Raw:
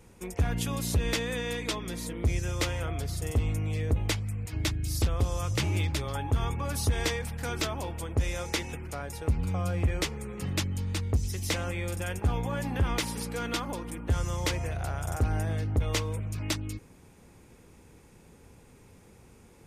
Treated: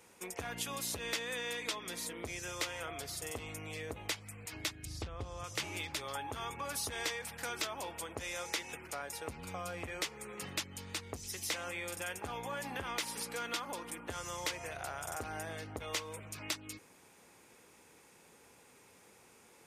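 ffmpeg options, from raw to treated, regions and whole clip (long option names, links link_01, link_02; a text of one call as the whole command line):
ffmpeg -i in.wav -filter_complex "[0:a]asettb=1/sr,asplit=3[link_01][link_02][link_03];[link_01]atrim=end=4.854[link_04];[link_02]atrim=start=4.85:end=5.44,asetpts=PTS-STARTPTS,afade=type=in:duration=0.004:curve=qsin,afade=type=out:start_time=0.586:duration=0.004:curve=qsin,lowpass=11000,aemphasis=mode=reproduction:type=bsi[link_05];[link_03]atrim=start=5.436[link_06];[link_04][link_05]acrossfade=duration=0.004:curve1=hsin:curve2=qsin[link_07];[link_07][link_06]acrossfade=duration=0.004:curve1=qsin:curve2=hsin,lowshelf=frequency=400:gain=-11.5,acompressor=threshold=-38dB:ratio=2,highpass=frequency=250:poles=1,volume=1dB" out.wav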